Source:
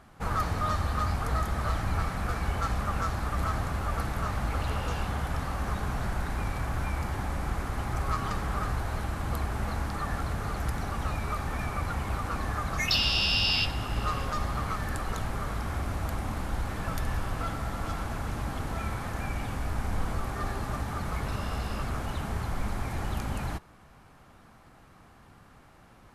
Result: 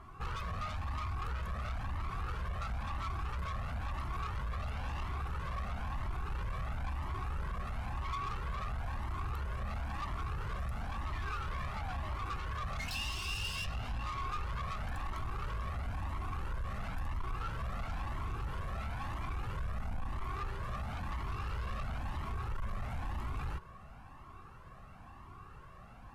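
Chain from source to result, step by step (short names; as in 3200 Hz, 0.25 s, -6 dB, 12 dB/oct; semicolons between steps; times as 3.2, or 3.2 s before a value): high shelf 2400 Hz -11 dB; small resonant body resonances 380/1100/2700 Hz, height 12 dB; compressor, threshold -30 dBFS, peak gain reduction 9 dB; painted sound fall, 11.12–12.26, 490–1900 Hz -43 dBFS; soft clip -38.5 dBFS, distortion -8 dB; bell 380 Hz -11 dB 1 oct; cascading flanger rising 0.99 Hz; gain +7 dB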